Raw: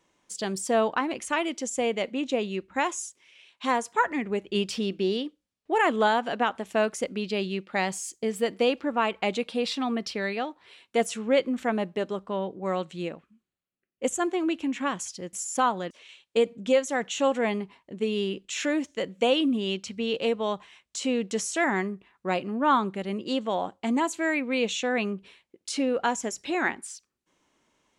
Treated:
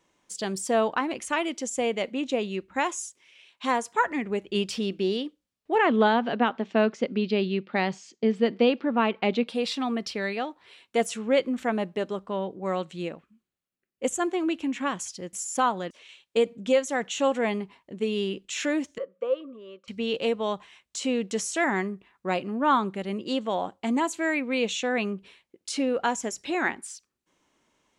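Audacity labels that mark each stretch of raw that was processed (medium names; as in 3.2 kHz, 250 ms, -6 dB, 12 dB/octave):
5.750000	9.480000	cabinet simulation 140–4800 Hz, peaks and dips at 150 Hz +8 dB, 230 Hz +8 dB, 410 Hz +4 dB
18.980000	19.880000	two resonant band-passes 790 Hz, apart 1.1 oct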